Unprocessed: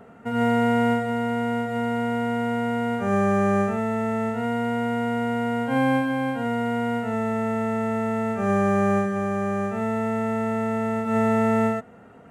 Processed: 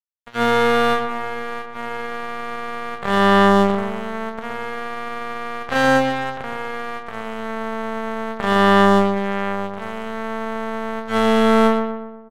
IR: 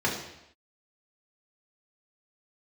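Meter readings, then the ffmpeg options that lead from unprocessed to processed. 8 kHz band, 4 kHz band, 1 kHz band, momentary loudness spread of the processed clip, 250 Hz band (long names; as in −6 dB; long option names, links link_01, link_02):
can't be measured, +12.5 dB, +6.0 dB, 14 LU, +1.0 dB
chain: -filter_complex "[0:a]equalizer=frequency=1700:width_type=o:width=0.29:gain=8.5,bandreject=frequency=2200:width=18,asplit=2[link_01][link_02];[1:a]atrim=start_sample=2205[link_03];[link_02][link_03]afir=irnorm=-1:irlink=0,volume=-33dB[link_04];[link_01][link_04]amix=inputs=2:normalize=0,acrusher=bits=2:mix=0:aa=0.5,equalizer=frequency=315:width_type=o:width=0.33:gain=-10,equalizer=frequency=2500:width_type=o:width=0.33:gain=-4,equalizer=frequency=5000:width_type=o:width=0.33:gain=-5,asplit=2[link_05][link_06];[link_06]adelay=121,lowpass=frequency=2000:poles=1,volume=-5dB,asplit=2[link_07][link_08];[link_08]adelay=121,lowpass=frequency=2000:poles=1,volume=0.52,asplit=2[link_09][link_10];[link_10]adelay=121,lowpass=frequency=2000:poles=1,volume=0.52,asplit=2[link_11][link_12];[link_12]adelay=121,lowpass=frequency=2000:poles=1,volume=0.52,asplit=2[link_13][link_14];[link_14]adelay=121,lowpass=frequency=2000:poles=1,volume=0.52,asplit=2[link_15][link_16];[link_16]adelay=121,lowpass=frequency=2000:poles=1,volume=0.52,asplit=2[link_17][link_18];[link_18]adelay=121,lowpass=frequency=2000:poles=1,volume=0.52[link_19];[link_05][link_07][link_09][link_11][link_13][link_15][link_17][link_19]amix=inputs=8:normalize=0,volume=3.5dB"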